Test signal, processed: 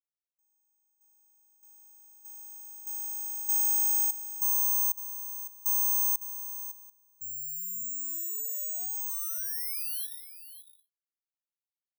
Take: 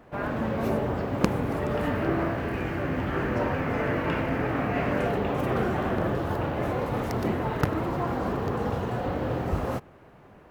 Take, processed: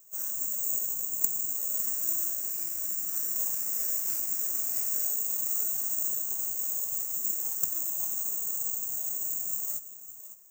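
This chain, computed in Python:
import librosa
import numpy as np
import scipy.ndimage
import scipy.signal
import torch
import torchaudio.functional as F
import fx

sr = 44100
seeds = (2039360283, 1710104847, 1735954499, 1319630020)

y = fx.freq_compress(x, sr, knee_hz=3400.0, ratio=1.5)
y = fx.low_shelf(y, sr, hz=91.0, db=-9.5)
y = y + 10.0 ** (-13.5 / 20.0) * np.pad(y, (int(556 * sr / 1000.0), 0))[:len(y)]
y = (np.kron(scipy.signal.resample_poly(y, 1, 6), np.eye(6)[0]) * 6)[:len(y)]
y = scipy.signal.lfilter([1.0, -0.8], [1.0], y)
y = F.gain(torch.from_numpy(y), -12.5).numpy()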